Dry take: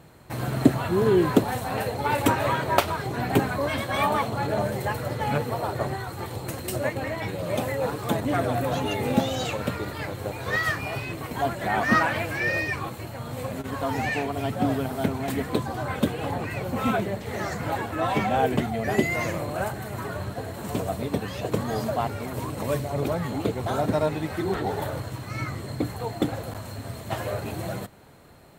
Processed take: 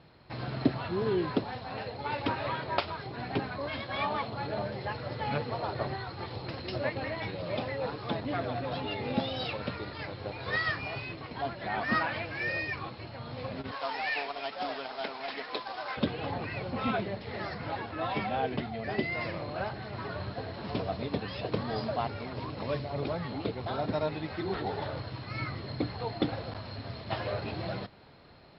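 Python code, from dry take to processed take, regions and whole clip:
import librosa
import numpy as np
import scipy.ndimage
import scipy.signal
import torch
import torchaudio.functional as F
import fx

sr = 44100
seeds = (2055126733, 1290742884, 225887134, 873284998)

y = fx.chain(x, sr, fx.bandpass_edges(low_hz=630.0, high_hz=6700.0),
    fx.quant_companded(bits=4), at=(13.71, 15.97))
y = scipy.signal.sosfilt(scipy.signal.cheby1(10, 1.0, 5300.0, 'lowpass', fs=sr, output='sos'), y)
y = fx.high_shelf(y, sr, hz=3600.0, db=9.0)
y = fx.rider(y, sr, range_db=4, speed_s=2.0)
y = F.gain(torch.from_numpy(y), -7.5).numpy()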